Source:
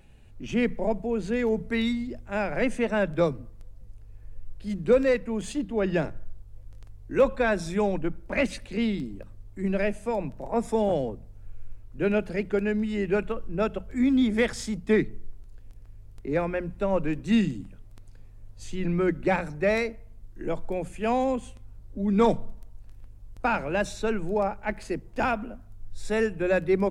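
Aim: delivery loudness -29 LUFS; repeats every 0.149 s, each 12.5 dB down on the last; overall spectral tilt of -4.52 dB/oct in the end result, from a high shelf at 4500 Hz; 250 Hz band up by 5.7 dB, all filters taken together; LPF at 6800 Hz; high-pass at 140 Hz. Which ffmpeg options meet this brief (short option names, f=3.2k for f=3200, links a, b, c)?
-af "highpass=140,lowpass=6.8k,equalizer=f=250:t=o:g=7.5,highshelf=f=4.5k:g=3,aecho=1:1:149|298|447:0.237|0.0569|0.0137,volume=-5.5dB"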